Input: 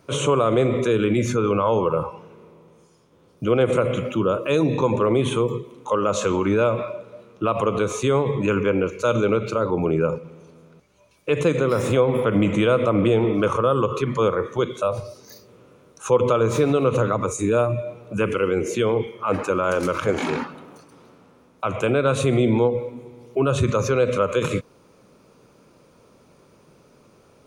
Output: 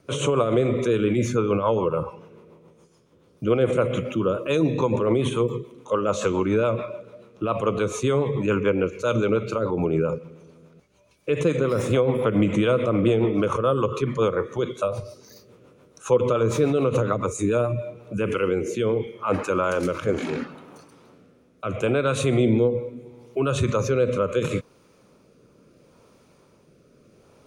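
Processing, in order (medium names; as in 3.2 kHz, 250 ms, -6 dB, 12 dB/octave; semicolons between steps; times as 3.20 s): rotary cabinet horn 7 Hz, later 0.75 Hz, at 17.60 s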